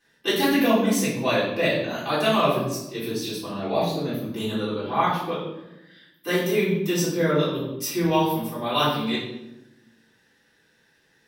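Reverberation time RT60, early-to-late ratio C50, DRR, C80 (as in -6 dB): 0.95 s, 2.5 dB, -12.0 dB, 6.0 dB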